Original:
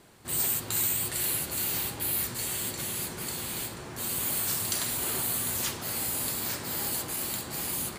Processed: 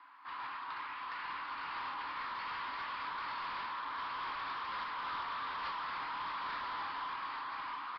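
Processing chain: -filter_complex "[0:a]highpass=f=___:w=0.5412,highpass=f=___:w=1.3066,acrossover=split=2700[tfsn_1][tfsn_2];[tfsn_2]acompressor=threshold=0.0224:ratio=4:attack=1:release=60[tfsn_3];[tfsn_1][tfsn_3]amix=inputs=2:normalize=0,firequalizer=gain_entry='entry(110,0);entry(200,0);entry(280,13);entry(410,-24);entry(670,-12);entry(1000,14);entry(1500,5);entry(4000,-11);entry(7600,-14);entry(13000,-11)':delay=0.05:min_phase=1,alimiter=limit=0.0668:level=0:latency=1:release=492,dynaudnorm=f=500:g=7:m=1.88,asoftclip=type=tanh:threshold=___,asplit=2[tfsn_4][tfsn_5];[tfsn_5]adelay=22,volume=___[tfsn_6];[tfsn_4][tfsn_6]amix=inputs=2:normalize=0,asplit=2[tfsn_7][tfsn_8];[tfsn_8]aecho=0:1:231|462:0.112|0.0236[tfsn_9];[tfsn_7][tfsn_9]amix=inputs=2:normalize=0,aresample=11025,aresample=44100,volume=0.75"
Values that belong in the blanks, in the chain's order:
540, 540, 0.0188, 0.237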